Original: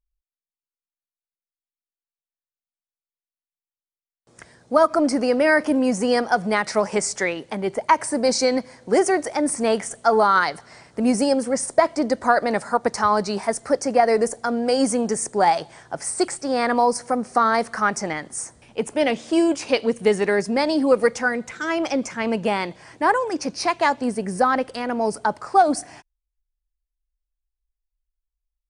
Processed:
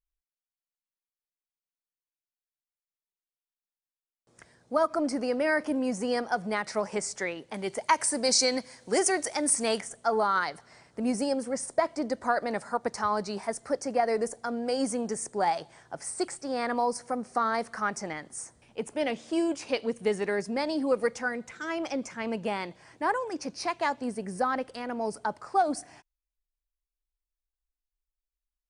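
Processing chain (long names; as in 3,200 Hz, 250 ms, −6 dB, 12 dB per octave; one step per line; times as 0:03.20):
0:07.54–0:09.81: high-shelf EQ 2,300 Hz +12 dB
level −9 dB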